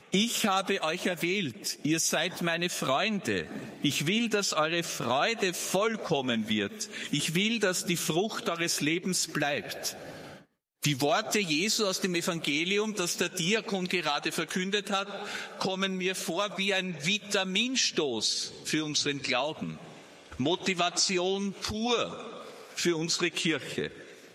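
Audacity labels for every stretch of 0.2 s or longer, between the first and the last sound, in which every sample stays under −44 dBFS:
10.380000	10.830000	silence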